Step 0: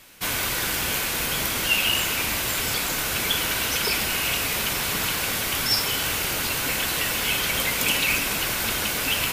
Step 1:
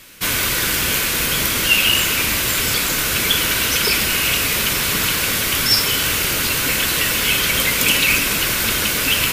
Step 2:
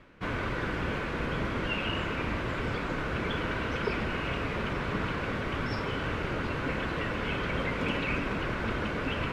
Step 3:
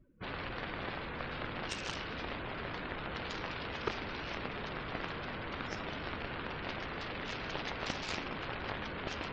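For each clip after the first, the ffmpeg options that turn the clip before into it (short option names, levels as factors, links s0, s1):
-af "equalizer=f=780:t=o:w=0.64:g=-7.5,volume=2.24"
-af "lowpass=1200,areverse,acompressor=mode=upward:threshold=0.02:ratio=2.5,areverse,volume=0.562"
-af "aeval=exprs='0.168*(cos(1*acos(clip(val(0)/0.168,-1,1)))-cos(1*PI/2))+0.0531*(cos(3*acos(clip(val(0)/0.168,-1,1)))-cos(3*PI/2))+0.0119*(cos(7*acos(clip(val(0)/0.168,-1,1)))-cos(7*PI/2))':c=same,asoftclip=type=tanh:threshold=0.0794,afftdn=nr=27:nf=-55,volume=1.5"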